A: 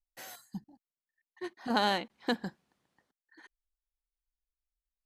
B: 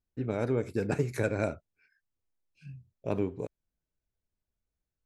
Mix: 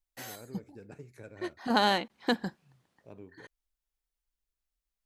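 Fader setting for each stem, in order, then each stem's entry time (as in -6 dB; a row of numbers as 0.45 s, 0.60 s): +3.0 dB, -19.0 dB; 0.00 s, 0.00 s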